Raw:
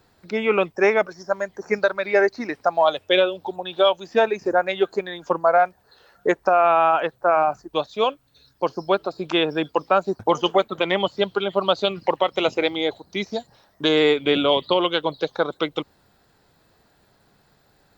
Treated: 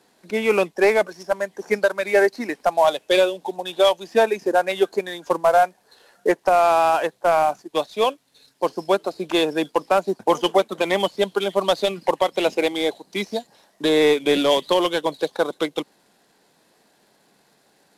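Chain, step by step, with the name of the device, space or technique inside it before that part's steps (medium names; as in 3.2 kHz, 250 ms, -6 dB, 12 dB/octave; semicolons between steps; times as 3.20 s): early wireless headset (high-pass 180 Hz 24 dB/octave; CVSD coder 64 kbps); peaking EQ 1.3 kHz -7 dB 0.21 oct; trim +1.5 dB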